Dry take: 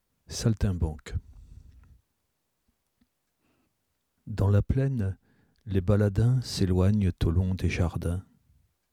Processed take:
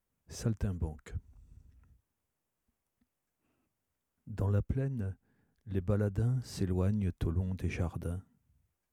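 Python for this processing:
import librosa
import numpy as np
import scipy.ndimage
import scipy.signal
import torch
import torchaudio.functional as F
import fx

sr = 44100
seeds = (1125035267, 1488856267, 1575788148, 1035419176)

y = fx.peak_eq(x, sr, hz=4200.0, db=-8.0, octaves=0.73)
y = y * 10.0 ** (-7.5 / 20.0)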